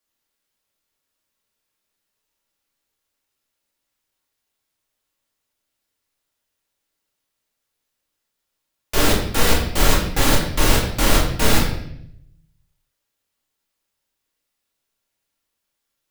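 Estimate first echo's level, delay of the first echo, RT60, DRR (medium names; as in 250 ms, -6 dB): no echo, no echo, 0.75 s, -5.0 dB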